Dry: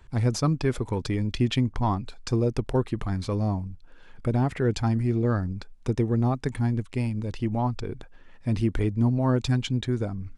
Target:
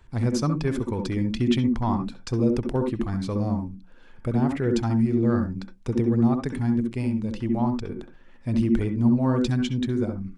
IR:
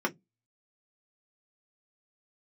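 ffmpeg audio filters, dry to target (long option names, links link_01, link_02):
-filter_complex "[0:a]asplit=2[link_01][link_02];[link_02]equalizer=frequency=230:width=1.3:gain=6.5[link_03];[1:a]atrim=start_sample=2205,adelay=65[link_04];[link_03][link_04]afir=irnorm=-1:irlink=0,volume=-15.5dB[link_05];[link_01][link_05]amix=inputs=2:normalize=0,volume=-1.5dB"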